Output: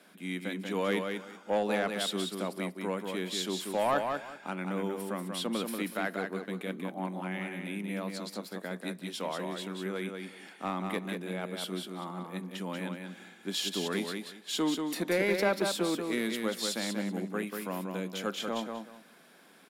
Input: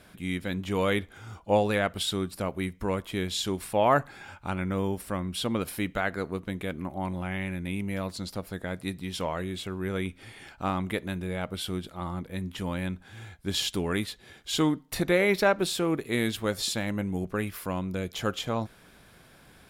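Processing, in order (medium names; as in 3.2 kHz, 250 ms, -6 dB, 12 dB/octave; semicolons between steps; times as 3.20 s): steep high-pass 180 Hz 48 dB/octave; saturation -16.5 dBFS, distortion -17 dB; feedback delay 187 ms, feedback 21%, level -5 dB; trim -3.5 dB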